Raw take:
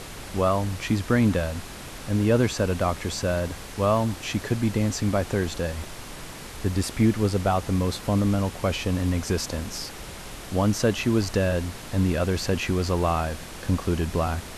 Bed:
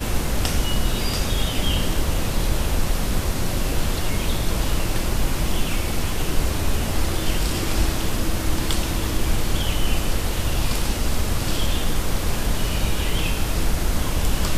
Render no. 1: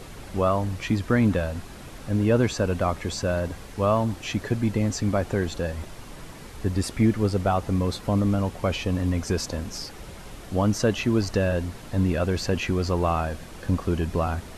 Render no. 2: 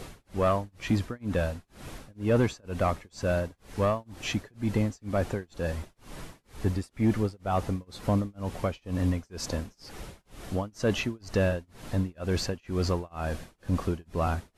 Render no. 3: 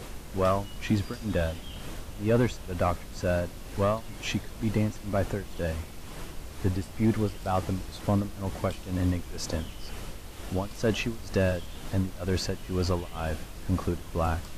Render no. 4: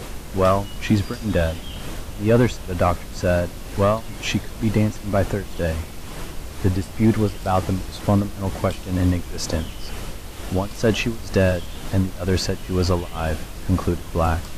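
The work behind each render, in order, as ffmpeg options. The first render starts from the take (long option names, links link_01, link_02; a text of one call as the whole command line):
ffmpeg -i in.wav -af "afftdn=noise_reduction=7:noise_floor=-39" out.wav
ffmpeg -i in.wav -af "tremolo=f=2.1:d=0.99,asoftclip=type=tanh:threshold=-14.5dB" out.wav
ffmpeg -i in.wav -i bed.wav -filter_complex "[1:a]volume=-19.5dB[link_01];[0:a][link_01]amix=inputs=2:normalize=0" out.wav
ffmpeg -i in.wav -af "volume=7.5dB" out.wav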